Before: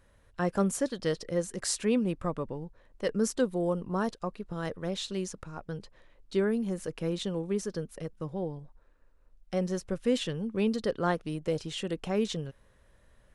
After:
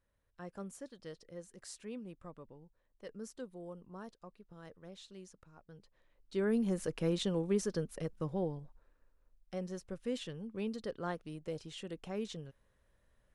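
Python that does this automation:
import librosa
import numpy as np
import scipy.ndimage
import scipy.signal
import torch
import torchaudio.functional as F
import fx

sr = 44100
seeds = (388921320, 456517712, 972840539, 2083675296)

y = fx.gain(x, sr, db=fx.line((5.7, -18.0), (6.35, -8.5), (6.56, -1.0), (8.37, -1.0), (9.61, -10.5)))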